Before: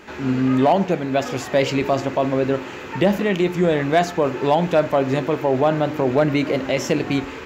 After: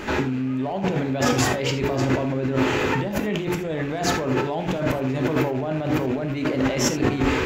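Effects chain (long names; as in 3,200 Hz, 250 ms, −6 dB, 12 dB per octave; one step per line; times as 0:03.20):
loose part that buzzes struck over −22 dBFS, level −25 dBFS
low-shelf EQ 150 Hz +9 dB
mains-hum notches 60/120/180 Hz
brickwall limiter −13 dBFS, peak gain reduction 8 dB
compressor whose output falls as the input rises −28 dBFS, ratio −1
reverb whose tail is shaped and stops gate 100 ms flat, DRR 7 dB
level +3.5 dB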